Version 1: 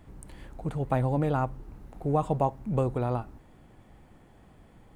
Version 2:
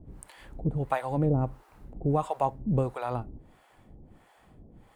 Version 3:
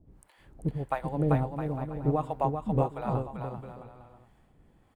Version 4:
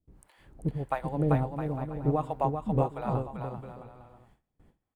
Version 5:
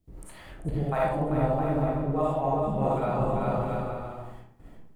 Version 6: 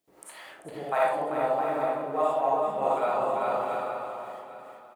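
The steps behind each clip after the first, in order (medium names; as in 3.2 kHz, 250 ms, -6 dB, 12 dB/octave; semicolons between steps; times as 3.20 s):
peaking EQ 6.2 kHz -2 dB 0.37 oct; harmonic tremolo 1.5 Hz, depth 100%, crossover 590 Hz; trim +4.5 dB
dynamic bell 7.4 kHz, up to -6 dB, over -60 dBFS, Q 0.84; on a send: bouncing-ball echo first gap 390 ms, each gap 0.7×, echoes 5; on the sum: upward expansion 1.5:1, over -39 dBFS
gate with hold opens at -50 dBFS
reverse; compression 6:1, threshold -36 dBFS, peak gain reduction 15.5 dB; reverse; reverberation RT60 0.60 s, pre-delay 15 ms, DRR -6 dB; trim +7 dB
high-pass 580 Hz 12 dB/octave; delay 797 ms -13 dB; trim +4 dB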